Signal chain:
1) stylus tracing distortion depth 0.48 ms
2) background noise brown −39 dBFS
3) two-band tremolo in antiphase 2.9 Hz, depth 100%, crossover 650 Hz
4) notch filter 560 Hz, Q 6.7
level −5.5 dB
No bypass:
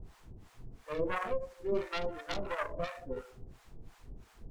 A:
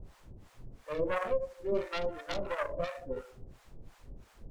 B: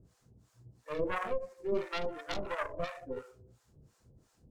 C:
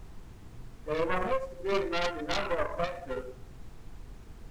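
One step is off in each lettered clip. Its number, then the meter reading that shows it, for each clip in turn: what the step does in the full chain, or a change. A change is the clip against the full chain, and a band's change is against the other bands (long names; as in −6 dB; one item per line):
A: 4, 500 Hz band +2.5 dB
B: 2, 125 Hz band −2.0 dB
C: 3, change in integrated loudness +5.0 LU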